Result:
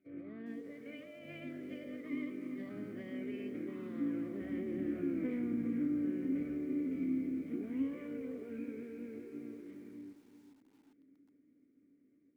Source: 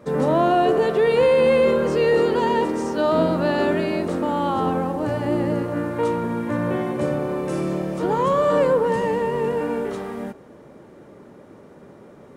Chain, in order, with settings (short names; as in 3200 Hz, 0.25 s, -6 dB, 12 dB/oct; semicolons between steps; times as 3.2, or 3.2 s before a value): Doppler pass-by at 5.17, 45 m/s, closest 11 m; band shelf 4800 Hz -14.5 dB; notch 1400 Hz, Q 21; de-hum 295.8 Hz, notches 6; compressor 5:1, threshold -37 dBFS, peak gain reduction 16 dB; formant-preserving pitch shift -10 st; vowel filter i; lo-fi delay 0.4 s, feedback 35%, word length 13-bit, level -10.5 dB; gain +15.5 dB